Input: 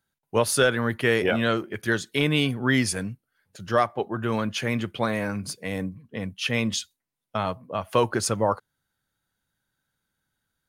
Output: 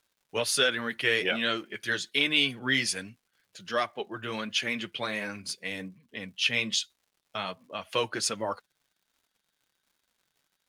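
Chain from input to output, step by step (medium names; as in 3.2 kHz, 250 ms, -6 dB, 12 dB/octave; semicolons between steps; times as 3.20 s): frequency weighting D; crackle 160 per s -48 dBFS; flange 1.3 Hz, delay 2.8 ms, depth 4.5 ms, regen -36%; trim -4.5 dB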